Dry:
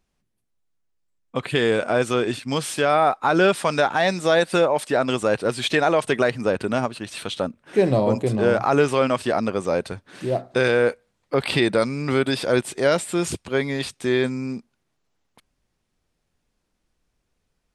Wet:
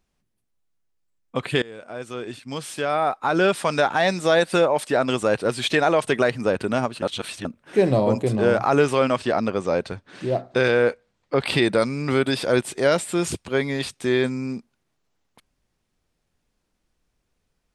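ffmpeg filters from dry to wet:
-filter_complex "[0:a]asettb=1/sr,asplit=3[a][b][c];[a]atrim=end=9.174[d];[b]atrim=start=9.17:end=11.45,asetpts=PTS-STARTPTS,afade=t=in:d=0.004:c=qsin,afade=t=out:st=2.276:d=0.004:c=qsin,lowpass=6.9k[e];[c]atrim=start=11.446[f];[d][e]acrossfade=d=0.004:c1=hsin:c2=qsin[g];[g][f]acrossfade=d=0.004:c1=qsin:c2=hsin,asplit=4[h][i][j][k];[h]atrim=end=1.62,asetpts=PTS-STARTPTS,afade=t=out:st=1.616:d=0.004:c=hsin:silence=0.0668344[l];[i]atrim=start=1.62:end=7.022,asetpts=PTS-STARTPTS,afade=t=in:d=2.28:silence=0.0668344[m];[j]atrim=start=7.018:end=7.452,asetpts=PTS-STARTPTS,areverse[n];[k]atrim=start=7.448[o];[l][m]concat=n=2:v=0:a=1[p];[p][n]acrossfade=d=0.004:c1=hsin:c2=hsin[q];[q][o]acrossfade=d=0.004:c1=hsin:c2=hsin"

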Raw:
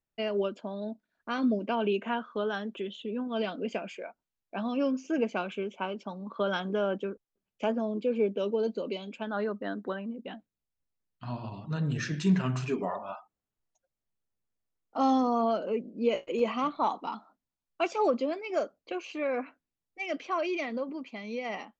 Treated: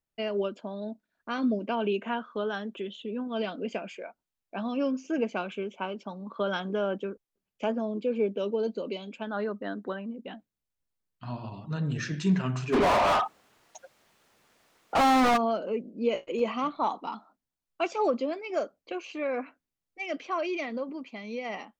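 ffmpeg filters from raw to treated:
-filter_complex "[0:a]asplit=3[a][b][c];[a]afade=t=out:st=12.72:d=0.02[d];[b]asplit=2[e][f];[f]highpass=f=720:p=1,volume=41dB,asoftclip=type=tanh:threshold=-15.5dB[g];[e][g]amix=inputs=2:normalize=0,lowpass=f=2.5k:p=1,volume=-6dB,afade=t=in:st=12.72:d=0.02,afade=t=out:st=15.36:d=0.02[h];[c]afade=t=in:st=15.36:d=0.02[i];[d][h][i]amix=inputs=3:normalize=0"

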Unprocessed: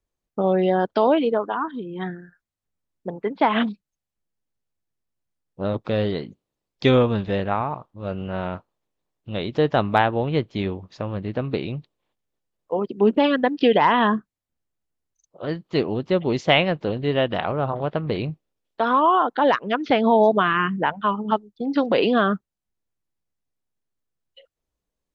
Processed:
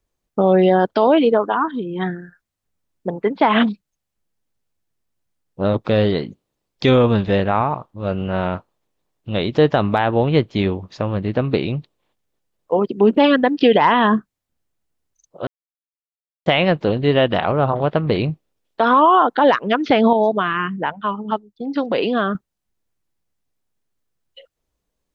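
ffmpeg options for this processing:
-filter_complex "[0:a]asplit=5[a][b][c][d][e];[a]atrim=end=15.47,asetpts=PTS-STARTPTS,afade=t=out:st=15.466:d=0.004:c=hsin[f];[b]atrim=start=15.47:end=16.46,asetpts=PTS-STARTPTS,volume=0[g];[c]atrim=start=16.46:end=20.132,asetpts=PTS-STARTPTS,afade=t=in:d=0.004:c=hsin[h];[d]atrim=start=20.128:end=22.352,asetpts=PTS-STARTPTS,volume=-7dB[i];[e]atrim=start=22.348[j];[f][g][h]concat=n=3:v=0:a=1[k];[k][i]acrossfade=d=0.004:c1=hsin:c2=hsin[l];[l][j]acrossfade=d=0.004:c1=hsin:c2=hsin,alimiter=limit=-11dB:level=0:latency=1:release=42,volume=6.5dB"

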